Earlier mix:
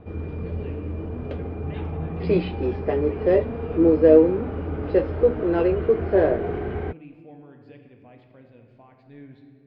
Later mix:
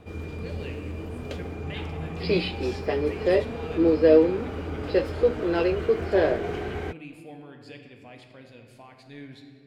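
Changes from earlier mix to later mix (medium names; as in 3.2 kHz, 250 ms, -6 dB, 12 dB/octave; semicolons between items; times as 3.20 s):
background -5.0 dB; master: remove tape spacing loss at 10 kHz 42 dB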